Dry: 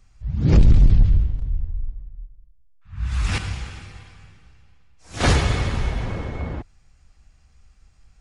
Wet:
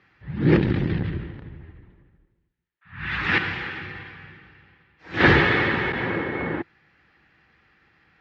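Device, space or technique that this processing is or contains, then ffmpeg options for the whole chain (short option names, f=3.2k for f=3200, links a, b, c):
overdrive pedal into a guitar cabinet: -filter_complex "[0:a]asplit=3[a][b][c];[a]afade=t=out:st=1.62:d=0.02[d];[b]adynamicequalizer=threshold=0.00126:dfrequency=2600:dqfactor=1:tfrequency=2600:tqfactor=1:attack=5:release=100:ratio=0.375:range=3:mode=boostabove:tftype=bell,afade=t=in:st=1.62:d=0.02,afade=t=out:st=3.15:d=0.02[e];[c]afade=t=in:st=3.15:d=0.02[f];[d][e][f]amix=inputs=3:normalize=0,asettb=1/sr,asplit=3[g][h][i];[g]atrim=end=3.814[j];[h]atrim=start=3.81:end=5.42,asetpts=PTS-STARTPTS,afade=t=in:d=0.004:c=qsin,afade=t=out:st=1.606:d=0.004:c=qsin,lowshelf=f=120:g=11.5[k];[i]atrim=start=5.416[l];[j][k]acrossfade=d=0.004:c1=hsin:c2=qsin[m];[m][l]acrossfade=d=0.004:c1=qsin:c2=hsin,asettb=1/sr,asplit=3[n][o][p];[n]atrim=end=5.924[q];[o]atrim=start=5.92:end=6.32,asetpts=PTS-STARTPTS,afade=t=in:d=0.004:c=qsin,afade=t=out:st=0.396:d=0.004:c=qsin,agate=range=-33dB:threshold=-26dB:ratio=3:detection=peak[r];[p]atrim=start=6.316[s];[q][r]acrossfade=d=0.004:c1=hsin:c2=qsin[t];[t][s]acrossfade=d=0.004:c1=qsin:c2=hsin,asplit=2[u][v];[v]highpass=f=720:p=1,volume=22dB,asoftclip=type=tanh:threshold=0dB[w];[u][w]amix=inputs=2:normalize=0,lowpass=f=1.6k:p=1,volume=-6dB,highpass=110,equalizer=f=160:t=q:w=4:g=4,equalizer=f=340:t=q:w=4:g=8,equalizer=f=660:t=q:w=4:g=-9,equalizer=f=1.1k:t=q:w=4:g=-4,equalizer=f=1.8k:t=q:w=4:g=9,lowpass=f=3.9k:w=0.5412,lowpass=f=3.9k:w=1.3066,volume=-4.5dB"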